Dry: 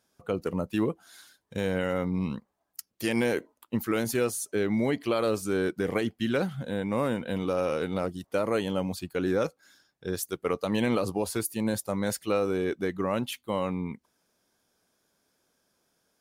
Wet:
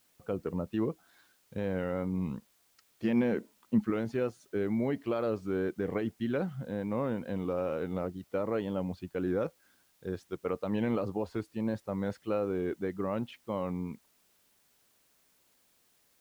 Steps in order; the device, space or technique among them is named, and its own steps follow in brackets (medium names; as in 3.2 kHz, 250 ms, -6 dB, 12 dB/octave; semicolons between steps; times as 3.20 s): cassette deck with a dirty head (tape spacing loss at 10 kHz 32 dB; wow and flutter; white noise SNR 35 dB); 3.04–3.90 s: peaking EQ 210 Hz +11.5 dB 0.35 oct; trim -3 dB